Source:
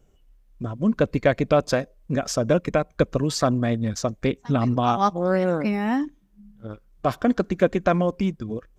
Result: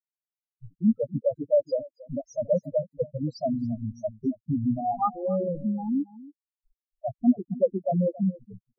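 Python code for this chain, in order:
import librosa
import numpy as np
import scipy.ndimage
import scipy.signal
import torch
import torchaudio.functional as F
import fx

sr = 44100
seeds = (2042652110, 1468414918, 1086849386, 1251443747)

p1 = np.where(np.abs(x) >= 10.0 ** (-23.0 / 20.0), x, 0.0)
p2 = fx.spec_topn(p1, sr, count=2)
p3 = p2 + fx.echo_single(p2, sr, ms=277, db=-19.0, dry=0)
p4 = fx.am_noise(p3, sr, seeds[0], hz=5.7, depth_pct=55)
y = F.gain(torch.from_numpy(p4), 3.5).numpy()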